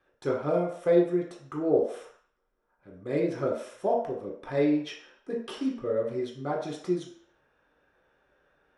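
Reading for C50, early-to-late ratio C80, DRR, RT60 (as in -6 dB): 4.5 dB, 8.5 dB, -3.5 dB, 0.60 s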